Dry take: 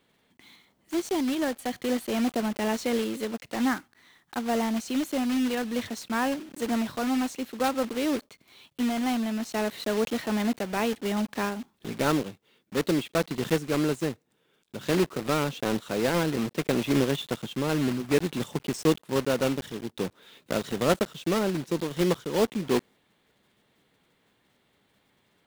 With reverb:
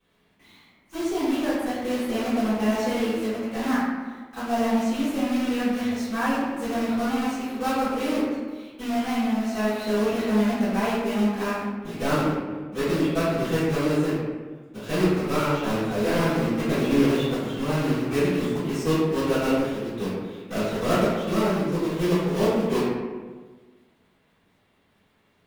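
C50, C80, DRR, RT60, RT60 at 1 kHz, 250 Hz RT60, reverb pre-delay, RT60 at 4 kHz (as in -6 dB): -2.0 dB, 1.0 dB, -17.0 dB, 1.4 s, 1.3 s, 1.6 s, 3 ms, 0.80 s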